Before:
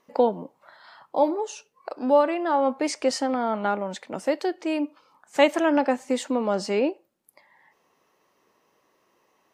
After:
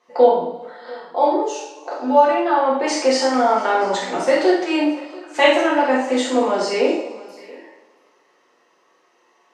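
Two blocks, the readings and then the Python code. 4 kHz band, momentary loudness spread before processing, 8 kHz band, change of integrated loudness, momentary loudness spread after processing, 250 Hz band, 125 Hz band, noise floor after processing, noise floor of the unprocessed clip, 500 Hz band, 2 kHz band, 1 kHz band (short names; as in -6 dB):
+9.0 dB, 12 LU, +6.5 dB, +6.5 dB, 14 LU, +4.5 dB, n/a, -60 dBFS, -69 dBFS, +6.5 dB, +9.0 dB, +8.5 dB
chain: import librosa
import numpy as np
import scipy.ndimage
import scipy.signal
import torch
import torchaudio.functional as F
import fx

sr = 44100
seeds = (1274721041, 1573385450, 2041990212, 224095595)

y = fx.rider(x, sr, range_db=10, speed_s=0.5)
y = fx.bandpass_edges(y, sr, low_hz=340.0, high_hz=6800.0)
y = fx.doubler(y, sr, ms=47.0, db=-7.0)
y = y + 10.0 ** (-21.5 / 20.0) * np.pad(y, (int(687 * sr / 1000.0), 0))[:len(y)]
y = fx.rev_double_slope(y, sr, seeds[0], early_s=0.57, late_s=1.9, knee_db=-16, drr_db=-6.0)
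y = y * librosa.db_to_amplitude(1.0)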